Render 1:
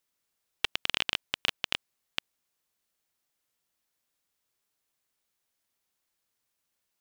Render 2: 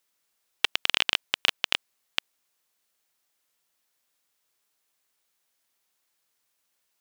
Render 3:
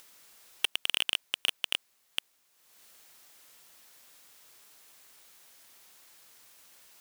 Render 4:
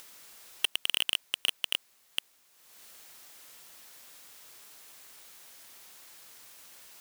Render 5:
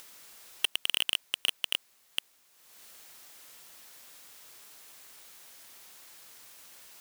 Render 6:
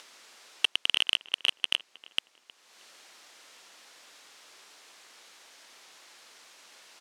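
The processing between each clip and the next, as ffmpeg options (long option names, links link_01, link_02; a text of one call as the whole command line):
ffmpeg -i in.wav -af "lowshelf=frequency=270:gain=-9,volume=5.5dB" out.wav
ffmpeg -i in.wav -af "asoftclip=type=tanh:threshold=-20dB,acompressor=mode=upward:threshold=-51dB:ratio=2.5,volume=6dB" out.wav
ffmpeg -i in.wav -af "volume=20.5dB,asoftclip=hard,volume=-20.5dB,volume=5dB" out.wav
ffmpeg -i in.wav -af anull out.wav
ffmpeg -i in.wav -filter_complex "[0:a]highpass=280,lowpass=6000,asplit=2[link_01][link_02];[link_02]adelay=314,lowpass=frequency=1700:poles=1,volume=-17.5dB,asplit=2[link_03][link_04];[link_04]adelay=314,lowpass=frequency=1700:poles=1,volume=0.38,asplit=2[link_05][link_06];[link_06]adelay=314,lowpass=frequency=1700:poles=1,volume=0.38[link_07];[link_01][link_03][link_05][link_07]amix=inputs=4:normalize=0,volume=3.5dB" out.wav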